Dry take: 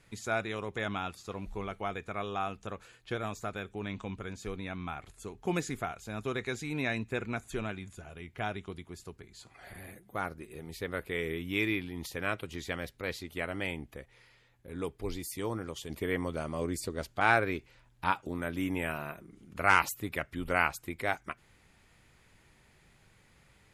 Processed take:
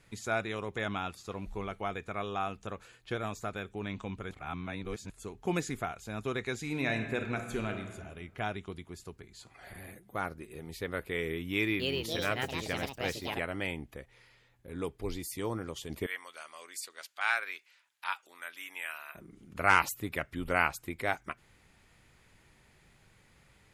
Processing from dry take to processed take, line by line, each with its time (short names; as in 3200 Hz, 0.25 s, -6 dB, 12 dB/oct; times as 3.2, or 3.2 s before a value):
4.31–5.1 reverse
6.59–7.9 reverb throw, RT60 1.4 s, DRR 5.5 dB
11.51–13.52 echoes that change speed 0.285 s, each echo +4 st, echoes 2
16.06–19.15 HPF 1500 Hz